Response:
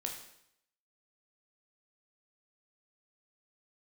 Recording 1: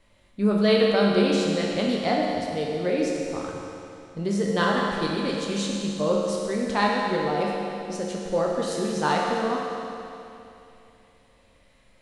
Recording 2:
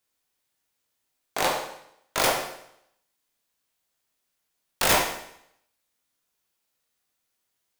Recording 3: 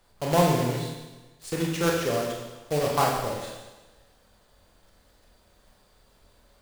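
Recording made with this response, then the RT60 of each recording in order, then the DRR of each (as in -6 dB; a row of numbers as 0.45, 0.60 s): 2; 2.8, 0.75, 1.2 s; -3.0, 1.0, -1.5 dB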